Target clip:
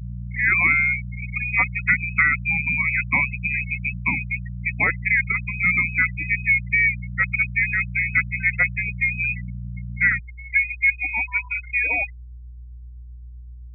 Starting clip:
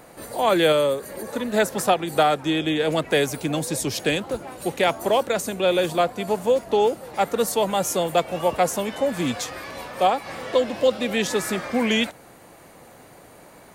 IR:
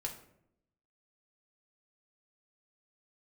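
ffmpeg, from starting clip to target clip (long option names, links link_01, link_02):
-af "lowpass=frequency=2300:width_type=q:width=0.5098,lowpass=frequency=2300:width_type=q:width=0.6013,lowpass=frequency=2300:width_type=q:width=0.9,lowpass=frequency=2300:width_type=q:width=2.563,afreqshift=-2700,aeval=exprs='val(0)+0.0224*(sin(2*PI*60*n/s)+sin(2*PI*2*60*n/s)/2+sin(2*PI*3*60*n/s)/3+sin(2*PI*4*60*n/s)/4+sin(2*PI*5*60*n/s)/5)':channel_layout=same,asetnsamples=nb_out_samples=441:pad=0,asendcmd='10.2 equalizer g -6',equalizer=frequency=150:width=0.92:gain=8,afftfilt=real='re*gte(hypot(re,im),0.141)':imag='im*gte(hypot(re,im),0.141)':win_size=1024:overlap=0.75"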